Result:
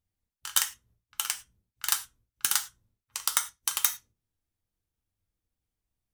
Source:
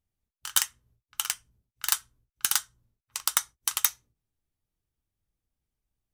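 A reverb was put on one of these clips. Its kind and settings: gated-style reverb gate 130 ms falling, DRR 7 dB; trim -1.5 dB

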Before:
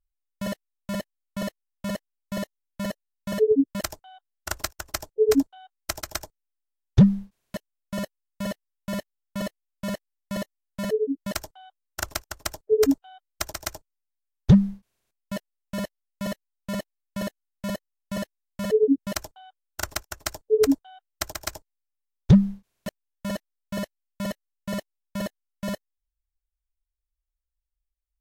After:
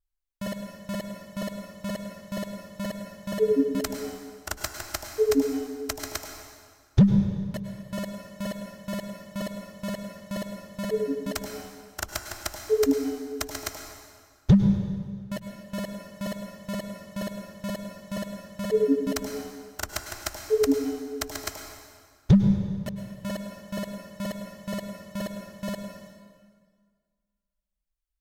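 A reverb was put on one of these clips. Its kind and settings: plate-style reverb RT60 1.8 s, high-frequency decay 0.85×, pre-delay 90 ms, DRR 5 dB; trim -2.5 dB

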